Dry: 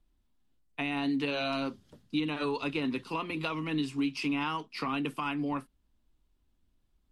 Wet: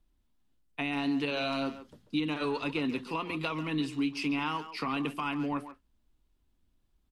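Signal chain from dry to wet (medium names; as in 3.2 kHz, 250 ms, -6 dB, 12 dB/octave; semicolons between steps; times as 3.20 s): speakerphone echo 140 ms, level -11 dB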